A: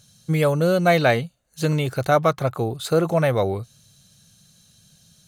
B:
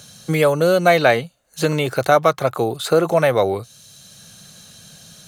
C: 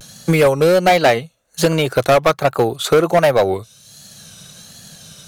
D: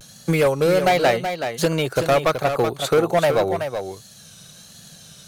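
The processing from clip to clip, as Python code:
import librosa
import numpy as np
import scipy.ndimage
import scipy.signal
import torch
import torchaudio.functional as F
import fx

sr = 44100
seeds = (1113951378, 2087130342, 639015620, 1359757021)

y1 = fx.bass_treble(x, sr, bass_db=-9, treble_db=0)
y1 = fx.band_squash(y1, sr, depth_pct=40)
y1 = y1 * 10.0 ** (5.0 / 20.0)
y2 = fx.transient(y1, sr, attack_db=4, sustain_db=-4)
y2 = np.clip(y2, -10.0 ** (-11.0 / 20.0), 10.0 ** (-11.0 / 20.0))
y2 = fx.vibrato(y2, sr, rate_hz=1.3, depth_cents=96.0)
y2 = y2 * 10.0 ** (3.5 / 20.0)
y3 = y2 + 10.0 ** (-8.0 / 20.0) * np.pad(y2, (int(376 * sr / 1000.0), 0))[:len(y2)]
y3 = y3 * 10.0 ** (-5.0 / 20.0)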